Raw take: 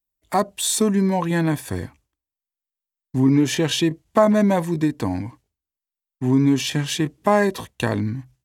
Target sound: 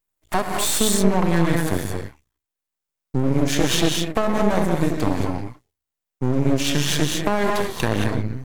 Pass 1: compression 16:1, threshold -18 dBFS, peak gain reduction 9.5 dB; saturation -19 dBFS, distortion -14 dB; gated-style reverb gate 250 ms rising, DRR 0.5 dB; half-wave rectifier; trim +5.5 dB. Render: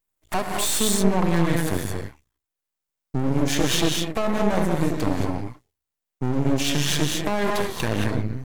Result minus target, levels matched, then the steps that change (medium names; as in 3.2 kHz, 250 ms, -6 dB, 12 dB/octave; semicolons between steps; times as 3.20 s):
saturation: distortion +11 dB
change: saturation -10.5 dBFS, distortion -26 dB